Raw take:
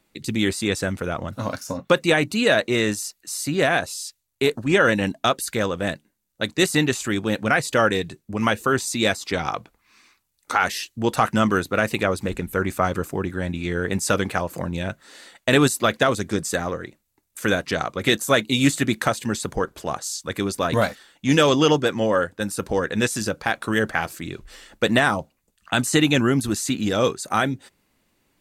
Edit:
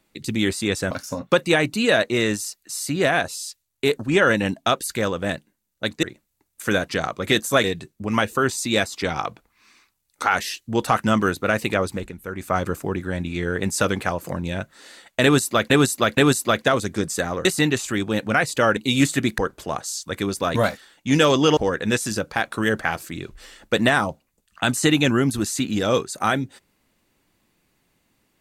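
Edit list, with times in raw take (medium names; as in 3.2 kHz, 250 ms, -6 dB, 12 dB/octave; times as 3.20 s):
0.91–1.49 s: delete
6.61–7.93 s: swap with 16.80–18.41 s
12.17–12.87 s: dip -9 dB, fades 0.24 s
15.52–15.99 s: loop, 3 plays
19.02–19.56 s: delete
21.75–22.67 s: delete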